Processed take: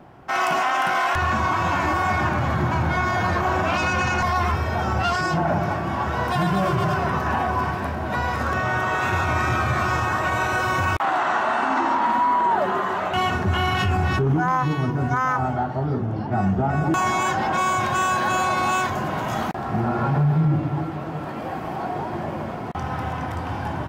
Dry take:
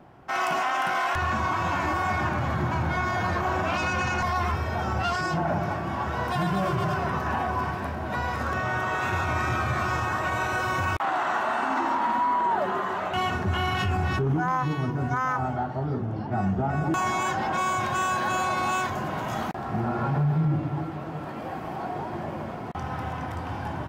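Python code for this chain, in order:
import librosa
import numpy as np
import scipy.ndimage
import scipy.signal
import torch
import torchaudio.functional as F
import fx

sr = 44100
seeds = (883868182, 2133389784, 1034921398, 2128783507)

y = fx.lowpass(x, sr, hz=8500.0, slope=12, at=(11.19, 12.06))
y = y * librosa.db_to_amplitude(4.5)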